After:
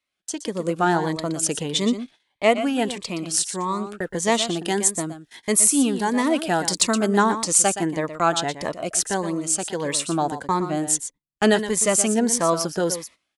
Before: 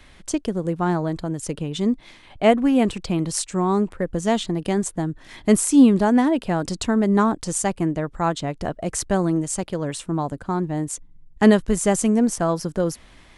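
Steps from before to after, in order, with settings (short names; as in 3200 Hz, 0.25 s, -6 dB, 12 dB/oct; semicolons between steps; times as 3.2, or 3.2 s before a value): HPF 880 Hz 6 dB/oct; gate -42 dBFS, range -26 dB; 4.68–7.18 high shelf 10000 Hz +10.5 dB; AGC gain up to 12.5 dB; echo 0.12 s -11 dB; cascading phaser rising 1.6 Hz; gain -1 dB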